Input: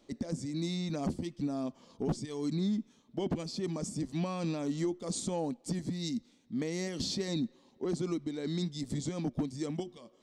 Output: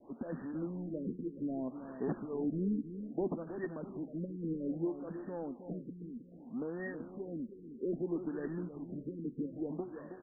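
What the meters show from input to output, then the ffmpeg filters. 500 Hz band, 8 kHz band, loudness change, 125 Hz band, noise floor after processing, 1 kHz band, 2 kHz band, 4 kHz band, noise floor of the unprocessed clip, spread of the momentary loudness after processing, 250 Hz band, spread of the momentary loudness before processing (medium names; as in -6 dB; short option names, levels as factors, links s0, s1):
-2.0 dB, under -35 dB, -4.0 dB, -7.5 dB, -53 dBFS, -6.5 dB, -3.5 dB, under -40 dB, -65 dBFS, 8 LU, -3.5 dB, 5 LU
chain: -filter_complex "[0:a]aeval=exprs='val(0)+0.5*0.00447*sgn(val(0))':c=same,highpass=230,lowpass=7400,aexciter=amount=11.5:drive=7.9:freq=2200,asplit=2[s0][s1];[s1]acrusher=bits=3:mix=0:aa=0.5,volume=0.355[s2];[s0][s2]amix=inputs=2:normalize=0,dynaudnorm=f=180:g=3:m=1.68,asplit=2[s3][s4];[s4]adelay=318,lowpass=f=1300:p=1,volume=0.316,asplit=2[s5][s6];[s6]adelay=318,lowpass=f=1300:p=1,volume=0.33,asplit=2[s7][s8];[s8]adelay=318,lowpass=f=1300:p=1,volume=0.33,asplit=2[s9][s10];[s10]adelay=318,lowpass=f=1300:p=1,volume=0.33[s11];[s3][s5][s7][s9][s11]amix=inputs=5:normalize=0,acrossover=split=630|920[s12][s13][s14];[s13]alimiter=level_in=6.68:limit=0.0631:level=0:latency=1,volume=0.15[s15];[s12][s15][s14]amix=inputs=3:normalize=0,adynamicequalizer=threshold=0.0112:dfrequency=1000:dqfactor=0.92:tfrequency=1000:tqfactor=0.92:attack=5:release=100:ratio=0.375:range=1.5:mode=cutabove:tftype=bell,afftfilt=real='re*lt(b*sr/1024,480*pow(1900/480,0.5+0.5*sin(2*PI*0.62*pts/sr)))':imag='im*lt(b*sr/1024,480*pow(1900/480,0.5+0.5*sin(2*PI*0.62*pts/sr)))':win_size=1024:overlap=0.75,volume=0.562"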